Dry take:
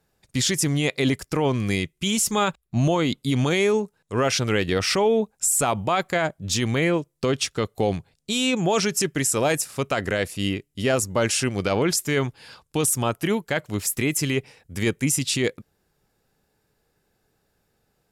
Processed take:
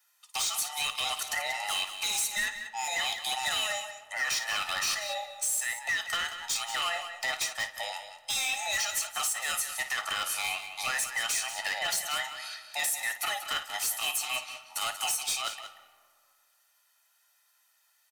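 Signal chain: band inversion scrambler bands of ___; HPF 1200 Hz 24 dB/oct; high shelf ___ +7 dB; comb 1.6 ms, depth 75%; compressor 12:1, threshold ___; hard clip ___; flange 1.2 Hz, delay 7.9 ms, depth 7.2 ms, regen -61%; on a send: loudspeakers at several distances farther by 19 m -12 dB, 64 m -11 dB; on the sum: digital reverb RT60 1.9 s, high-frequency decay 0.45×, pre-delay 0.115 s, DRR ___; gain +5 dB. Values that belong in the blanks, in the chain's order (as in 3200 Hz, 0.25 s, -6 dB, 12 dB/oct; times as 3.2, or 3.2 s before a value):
1000 Hz, 5400 Hz, -25 dBFS, -27 dBFS, 16 dB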